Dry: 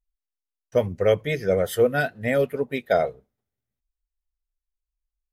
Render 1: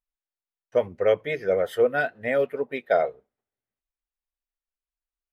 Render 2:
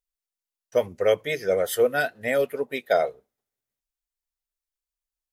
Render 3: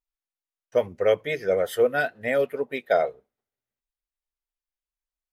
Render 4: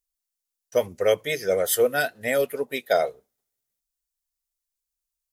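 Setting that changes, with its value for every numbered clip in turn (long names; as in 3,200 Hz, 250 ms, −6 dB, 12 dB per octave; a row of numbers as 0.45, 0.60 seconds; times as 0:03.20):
bass and treble, treble: −14, +4, −5, +12 decibels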